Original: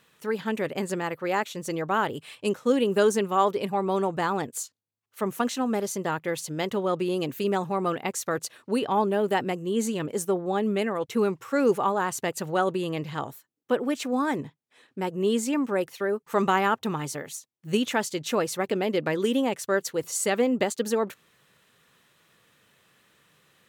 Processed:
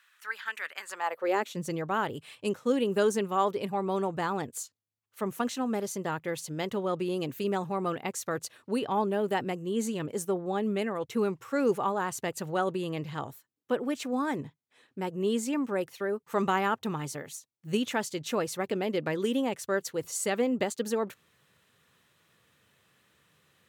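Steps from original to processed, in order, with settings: high-pass sweep 1500 Hz -> 74 Hz, 0.83–1.9; gain -4.5 dB

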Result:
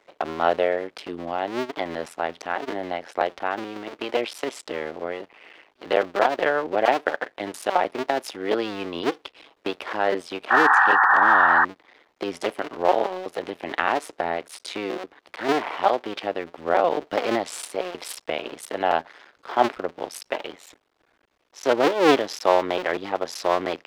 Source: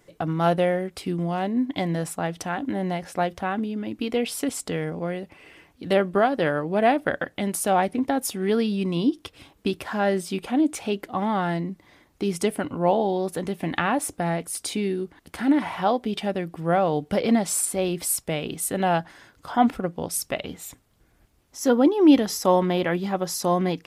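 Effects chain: cycle switcher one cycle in 2, muted; painted sound noise, 10.5–11.65, 730–1900 Hz -21 dBFS; three-band isolator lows -22 dB, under 330 Hz, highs -18 dB, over 5100 Hz; gain +4.5 dB

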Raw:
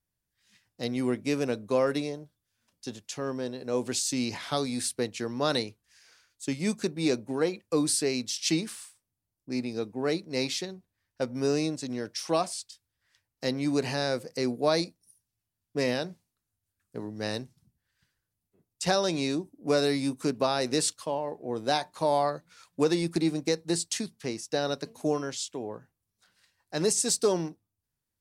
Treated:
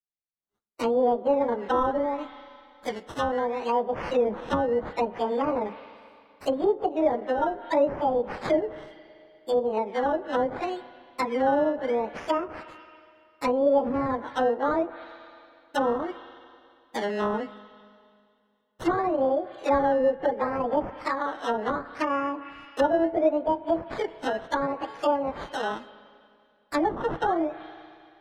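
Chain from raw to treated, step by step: pitch shift by moving bins +11.5 st; expander -53 dBFS; high shelf 2400 Hz -10.5 dB; in parallel at -2 dB: compressor, threshold -38 dBFS, peak gain reduction 14.5 dB; on the sum: decimation with a swept rate 15×, swing 60% 0.71 Hz; spring tank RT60 2.4 s, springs 32/39/48 ms, chirp 25 ms, DRR 16.5 dB; treble ducked by the level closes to 790 Hz, closed at -27.5 dBFS; gain +7.5 dB

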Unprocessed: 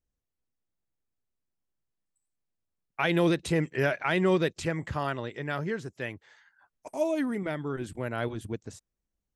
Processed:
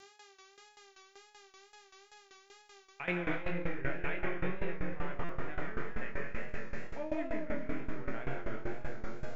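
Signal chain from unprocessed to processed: half-wave gain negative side -3 dB; in parallel at -10.5 dB: requantised 6-bit, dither triangular; on the sum: gate -34 dBFS, range -27 dB; ladder low-pass 2700 Hz, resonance 45%; digital reverb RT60 3.9 s, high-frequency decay 0.5×, pre-delay 75 ms, DRR -2 dB; buzz 400 Hz, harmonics 18, -63 dBFS -3 dB/oct; wow and flutter 80 cents; flutter echo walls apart 3.9 m, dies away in 0.29 s; reverse; compressor 4:1, threshold -34 dBFS, peak gain reduction 15 dB; reverse; tremolo saw down 5.2 Hz, depth 85%; stuck buffer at 5.24, samples 256, times 8; gain +6.5 dB

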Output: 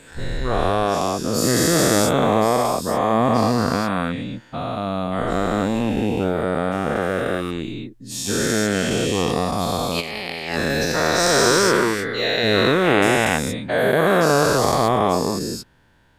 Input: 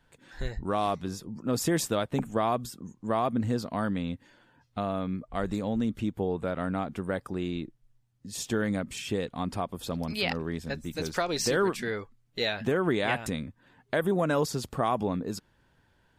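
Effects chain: spectral dilation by 0.48 s; 10–10.92 negative-ratio compressor -26 dBFS, ratio -0.5; gain +2.5 dB

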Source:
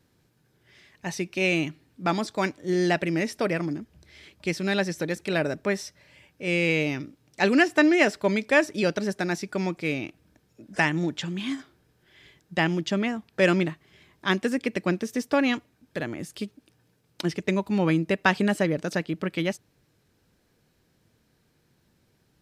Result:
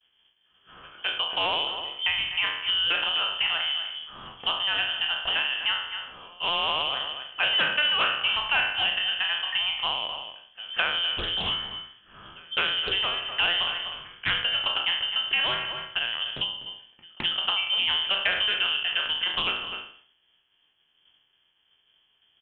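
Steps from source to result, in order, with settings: spectral trails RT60 0.55 s; on a send: echo 0.249 s -15 dB; on the sum: expander -57 dBFS; in parallel at -7.5 dB: hard clip -16.5 dBFS, distortion -13 dB; on the sum: compressor 2.5:1, threshold -30 dBFS, peak gain reduction 12.5 dB; pre-echo 0.212 s -24 dB; inverted band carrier 3300 Hz; Doppler distortion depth 0.29 ms; gain +3 dB

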